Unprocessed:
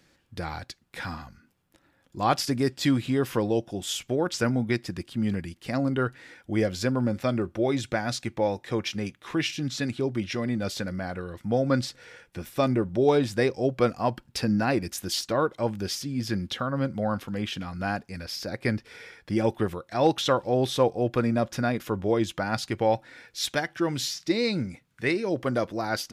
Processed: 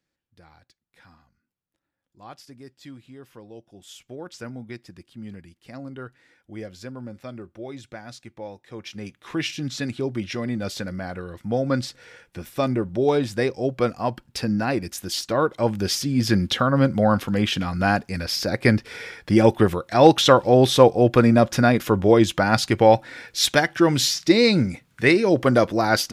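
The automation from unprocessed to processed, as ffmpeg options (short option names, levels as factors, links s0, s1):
-af "volume=2.82,afade=t=in:st=3.46:d=0.76:silence=0.398107,afade=t=in:st=8.72:d=0.73:silence=0.251189,afade=t=in:st=15.13:d=1.16:silence=0.398107"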